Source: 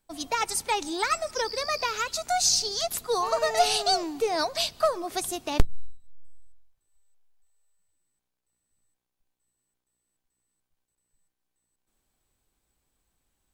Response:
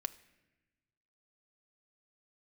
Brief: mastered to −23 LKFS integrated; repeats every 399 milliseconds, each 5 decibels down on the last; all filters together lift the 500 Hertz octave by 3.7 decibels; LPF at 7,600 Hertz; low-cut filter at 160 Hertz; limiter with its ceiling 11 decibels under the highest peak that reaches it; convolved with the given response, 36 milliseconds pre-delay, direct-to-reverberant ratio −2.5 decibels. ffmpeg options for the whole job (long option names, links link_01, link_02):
-filter_complex "[0:a]highpass=160,lowpass=7600,equalizer=frequency=500:width_type=o:gain=5,alimiter=limit=-16.5dB:level=0:latency=1,aecho=1:1:399|798|1197|1596|1995|2394|2793:0.562|0.315|0.176|0.0988|0.0553|0.031|0.0173,asplit=2[link_01][link_02];[1:a]atrim=start_sample=2205,adelay=36[link_03];[link_02][link_03]afir=irnorm=-1:irlink=0,volume=3.5dB[link_04];[link_01][link_04]amix=inputs=2:normalize=0,volume=-1.5dB"